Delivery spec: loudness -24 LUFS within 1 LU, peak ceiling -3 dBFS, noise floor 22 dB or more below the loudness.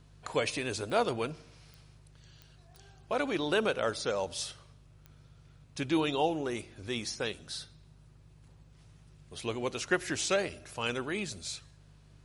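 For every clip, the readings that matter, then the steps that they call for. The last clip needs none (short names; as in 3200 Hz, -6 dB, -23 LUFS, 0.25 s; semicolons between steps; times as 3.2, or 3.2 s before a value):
clicks 5; hum 50 Hz; harmonics up to 150 Hz; hum level -56 dBFS; loudness -33.0 LUFS; peak -14.0 dBFS; loudness target -24.0 LUFS
-> de-click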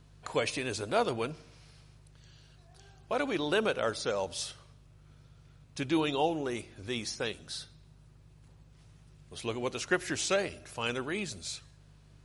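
clicks 0; hum 50 Hz; harmonics up to 150 Hz; hum level -56 dBFS
-> de-hum 50 Hz, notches 3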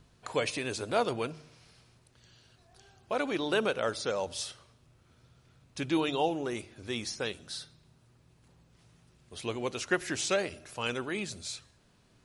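hum none; loudness -33.0 LUFS; peak -14.0 dBFS; loudness target -24.0 LUFS
-> gain +9 dB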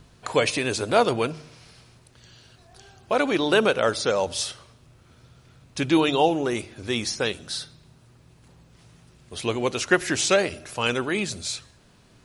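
loudness -24.0 LUFS; peak -5.0 dBFS; noise floor -56 dBFS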